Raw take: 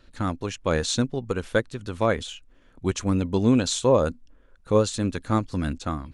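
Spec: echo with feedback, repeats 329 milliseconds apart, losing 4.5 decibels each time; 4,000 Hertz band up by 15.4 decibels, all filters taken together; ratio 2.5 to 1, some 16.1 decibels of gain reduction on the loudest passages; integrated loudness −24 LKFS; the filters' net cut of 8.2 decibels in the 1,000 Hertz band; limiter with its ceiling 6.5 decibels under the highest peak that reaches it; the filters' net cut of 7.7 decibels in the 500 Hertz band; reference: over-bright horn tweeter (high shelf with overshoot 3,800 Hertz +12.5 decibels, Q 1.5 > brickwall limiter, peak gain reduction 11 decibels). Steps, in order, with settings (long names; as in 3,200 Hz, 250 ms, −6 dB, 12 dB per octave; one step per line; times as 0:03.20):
parametric band 500 Hz −7 dB
parametric band 1,000 Hz −8 dB
parametric band 4,000 Hz +8.5 dB
downward compressor 2.5 to 1, threshold −42 dBFS
brickwall limiter −29 dBFS
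high shelf with overshoot 3,800 Hz +12.5 dB, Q 1.5
repeating echo 329 ms, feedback 60%, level −4.5 dB
level +13.5 dB
brickwall limiter −14.5 dBFS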